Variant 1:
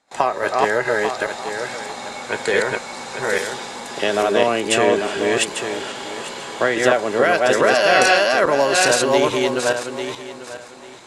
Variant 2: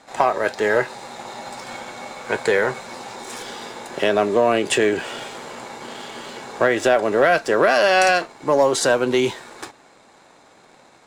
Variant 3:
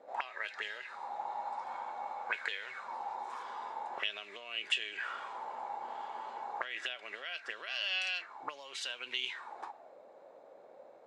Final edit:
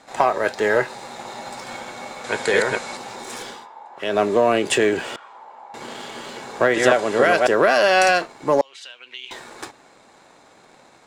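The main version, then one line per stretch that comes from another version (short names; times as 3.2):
2
2.24–2.97 from 1
3.56–4.08 from 3, crossfade 0.24 s
5.16–5.74 from 3
6.74–7.47 from 1
8.61–9.31 from 3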